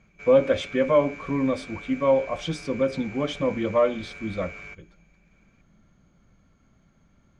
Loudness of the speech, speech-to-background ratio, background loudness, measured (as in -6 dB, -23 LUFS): -24.5 LUFS, 16.0 dB, -40.5 LUFS